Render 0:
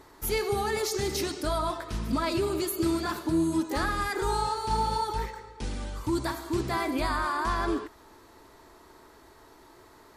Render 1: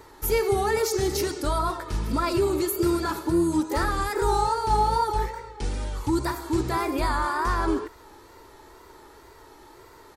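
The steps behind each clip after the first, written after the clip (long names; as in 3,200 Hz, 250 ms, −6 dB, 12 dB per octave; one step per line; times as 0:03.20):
dynamic equaliser 3,200 Hz, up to −5 dB, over −48 dBFS, Q 1.1
comb filter 2.2 ms, depth 37%
tape wow and flutter 71 cents
level +3.5 dB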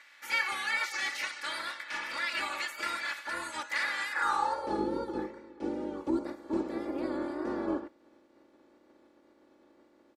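ceiling on every frequency bin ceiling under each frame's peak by 24 dB
comb filter 3.5 ms, depth 66%
band-pass filter sweep 2,000 Hz → 350 Hz, 0:04.08–0:04.87
level −1 dB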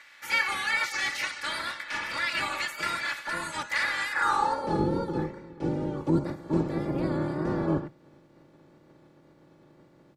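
sub-octave generator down 1 octave, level +1 dB
level +4 dB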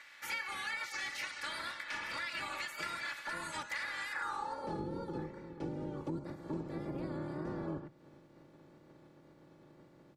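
downward compressor 4 to 1, threshold −35 dBFS, peak gain reduction 13.5 dB
level −3 dB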